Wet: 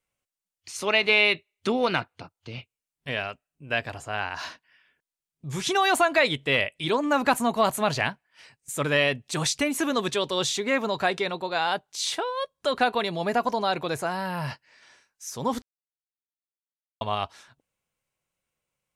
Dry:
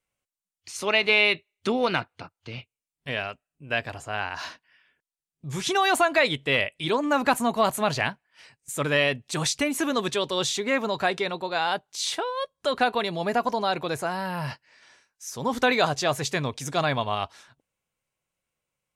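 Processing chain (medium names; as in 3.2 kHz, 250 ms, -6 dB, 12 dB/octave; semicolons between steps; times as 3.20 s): 2.14–2.55 s: dynamic bell 1.7 kHz, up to -6 dB, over -56 dBFS, Q 1; 15.62–17.01 s: mute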